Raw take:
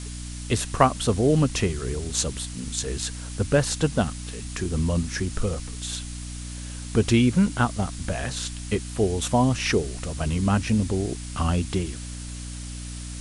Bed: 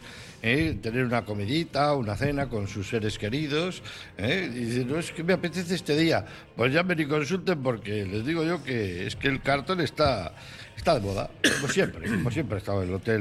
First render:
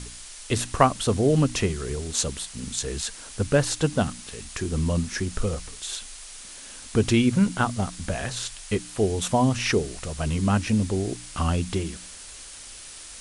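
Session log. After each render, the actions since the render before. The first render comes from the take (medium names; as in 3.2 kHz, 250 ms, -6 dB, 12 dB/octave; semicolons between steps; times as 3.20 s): de-hum 60 Hz, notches 5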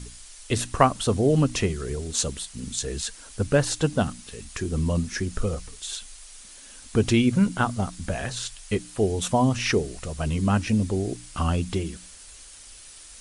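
noise reduction 6 dB, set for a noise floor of -42 dBFS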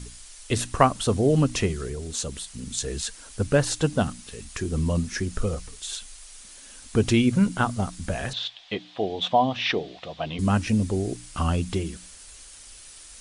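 1.87–2.73 s: compression 1.5:1, threshold -33 dBFS; 8.33–10.39 s: cabinet simulation 220–4100 Hz, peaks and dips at 230 Hz -5 dB, 400 Hz -6 dB, 730 Hz +7 dB, 1.4 kHz -5 dB, 3.5 kHz +10 dB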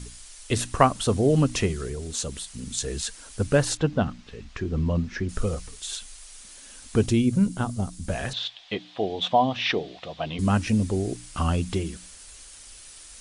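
3.77–5.29 s: distance through air 200 m; 7.06–8.09 s: peaking EQ 1.7 kHz -9.5 dB 2.9 oct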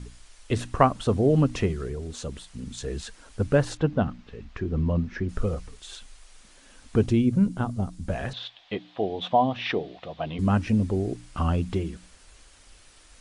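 low-pass 1.8 kHz 6 dB/octave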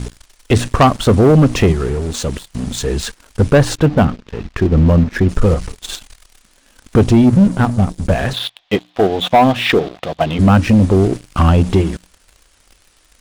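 in parallel at +0.5 dB: level held to a coarse grid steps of 14 dB; on the sum: waveshaping leveller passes 3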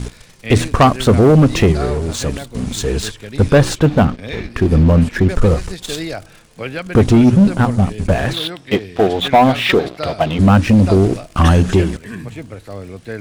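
add bed -2.5 dB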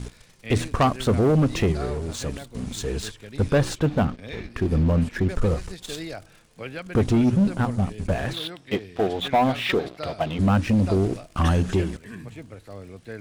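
trim -9.5 dB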